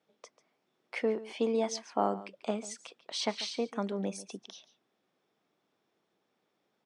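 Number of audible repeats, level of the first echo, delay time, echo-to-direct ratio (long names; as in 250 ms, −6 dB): 1, −16.5 dB, 141 ms, −16.5 dB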